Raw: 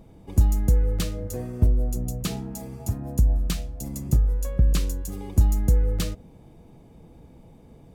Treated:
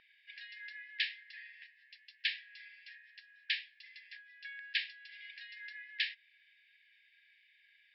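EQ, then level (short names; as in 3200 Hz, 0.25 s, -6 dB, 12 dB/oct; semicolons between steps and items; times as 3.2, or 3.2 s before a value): brick-wall FIR band-pass 1600–5500 Hz; air absorption 440 m; +13.0 dB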